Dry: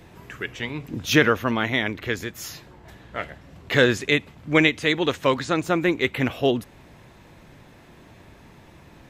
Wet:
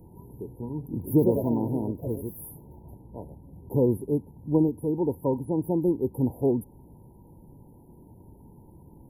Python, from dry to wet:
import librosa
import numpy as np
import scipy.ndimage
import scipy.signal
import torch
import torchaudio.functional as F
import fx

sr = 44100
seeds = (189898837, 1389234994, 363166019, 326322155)

y = fx.peak_eq(x, sr, hz=660.0, db=-14.0, octaves=0.59)
y = fx.echo_pitch(y, sr, ms=160, semitones=3, count=2, db_per_echo=-6.0, at=(0.8, 3.16))
y = fx.brickwall_bandstop(y, sr, low_hz=1000.0, high_hz=9900.0)